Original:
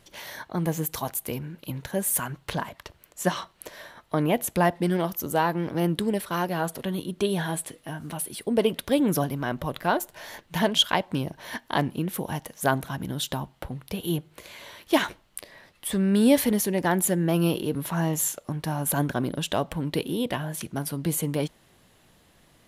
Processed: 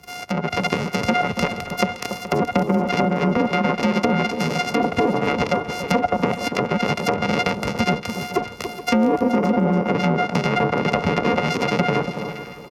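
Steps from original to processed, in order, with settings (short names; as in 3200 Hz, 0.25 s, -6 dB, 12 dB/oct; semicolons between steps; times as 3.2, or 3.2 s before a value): sample sorter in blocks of 64 samples; treble ducked by the level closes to 820 Hz, closed at -20 dBFS; ripple EQ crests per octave 0.82, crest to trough 7 dB; compressor, threshold -28 dBFS, peak gain reduction 11.5 dB; granular stretch 0.56×, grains 26 ms; frequency shift +31 Hz; echo with dull and thin repeats by turns 0.284 s, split 1200 Hz, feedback 55%, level -8 dB; AGC gain up to 5 dB; feedback echo 0.425 s, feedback 30%, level -14 dB; gain +8.5 dB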